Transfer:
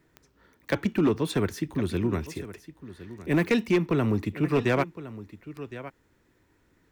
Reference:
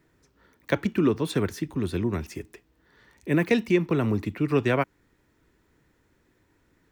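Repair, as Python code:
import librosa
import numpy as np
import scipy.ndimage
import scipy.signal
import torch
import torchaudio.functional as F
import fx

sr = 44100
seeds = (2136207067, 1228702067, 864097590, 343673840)

y = fx.fix_declip(x, sr, threshold_db=-16.5)
y = fx.fix_declick_ar(y, sr, threshold=10.0)
y = fx.fix_echo_inverse(y, sr, delay_ms=1062, level_db=-15.5)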